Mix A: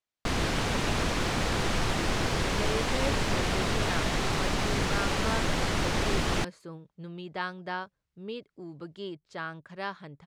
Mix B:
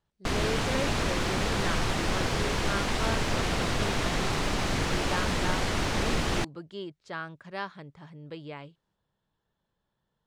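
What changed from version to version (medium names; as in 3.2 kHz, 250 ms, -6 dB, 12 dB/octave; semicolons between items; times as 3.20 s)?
speech: entry -2.25 s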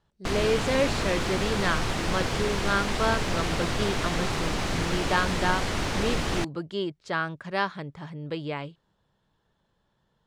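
speech +8.5 dB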